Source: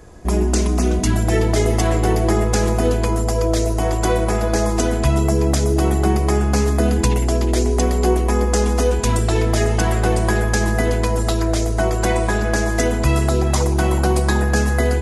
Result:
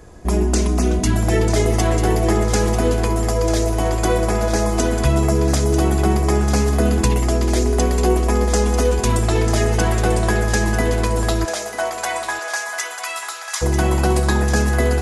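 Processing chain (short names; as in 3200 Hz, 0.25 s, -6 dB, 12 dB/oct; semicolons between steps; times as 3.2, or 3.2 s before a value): 5.94–6.37 crackle 17/s -43 dBFS; 11.44–13.61 HPF 470 Hz -> 1300 Hz 24 dB/oct; on a send: thinning echo 0.943 s, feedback 42%, high-pass 810 Hz, level -8 dB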